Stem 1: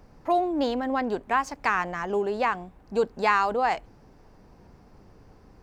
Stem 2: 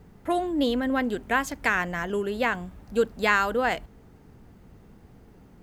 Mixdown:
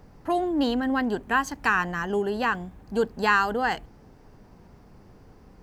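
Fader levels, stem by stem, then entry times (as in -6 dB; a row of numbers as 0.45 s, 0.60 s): 0.0 dB, -5.0 dB; 0.00 s, 0.00 s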